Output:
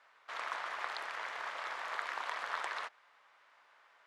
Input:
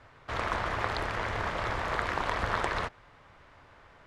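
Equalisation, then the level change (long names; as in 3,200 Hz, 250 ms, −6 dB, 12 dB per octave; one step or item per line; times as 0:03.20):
high-pass filter 870 Hz 12 dB per octave
−6.0 dB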